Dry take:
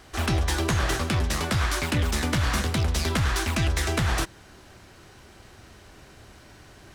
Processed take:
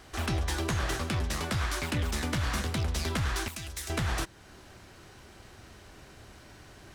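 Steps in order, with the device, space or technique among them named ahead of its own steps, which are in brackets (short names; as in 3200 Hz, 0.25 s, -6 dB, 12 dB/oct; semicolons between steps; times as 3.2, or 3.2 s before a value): 3.48–3.9 pre-emphasis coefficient 0.8; parallel compression (in parallel at -2 dB: compressor, threshold -38 dBFS, peak gain reduction 16.5 dB); on the sum: gain -7 dB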